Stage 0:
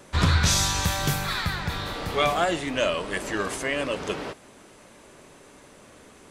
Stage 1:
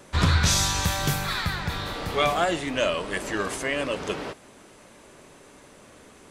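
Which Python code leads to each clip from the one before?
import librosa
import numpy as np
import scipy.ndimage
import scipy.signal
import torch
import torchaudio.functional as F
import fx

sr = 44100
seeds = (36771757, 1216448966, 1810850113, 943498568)

y = x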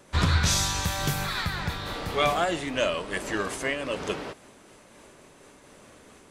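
y = fx.am_noise(x, sr, seeds[0], hz=5.7, depth_pct=50)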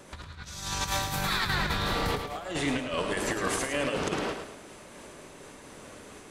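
y = fx.over_compress(x, sr, threshold_db=-31.0, ratio=-0.5)
y = fx.echo_feedback(y, sr, ms=107, feedback_pct=36, wet_db=-7.0)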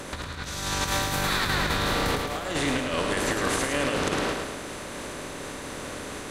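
y = fx.bin_compress(x, sr, power=0.6)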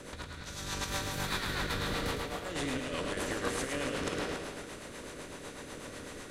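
y = fx.comb_fb(x, sr, f0_hz=480.0, decay_s=0.7, harmonics='all', damping=0.0, mix_pct=70)
y = fx.rotary(y, sr, hz=8.0)
y = y + 10.0 ** (-11.5 / 20.0) * np.pad(y, (int(280 * sr / 1000.0), 0))[:len(y)]
y = y * 10.0 ** (3.5 / 20.0)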